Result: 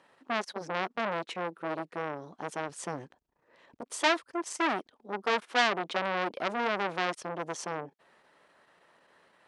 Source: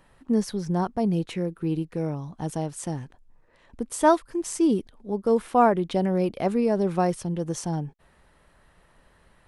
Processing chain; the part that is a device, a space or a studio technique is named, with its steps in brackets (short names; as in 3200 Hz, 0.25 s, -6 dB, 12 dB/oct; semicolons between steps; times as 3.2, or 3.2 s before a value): public-address speaker with an overloaded transformer (core saturation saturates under 3200 Hz; BPF 320–6800 Hz); 2.69–3.83 low shelf 190 Hz +9 dB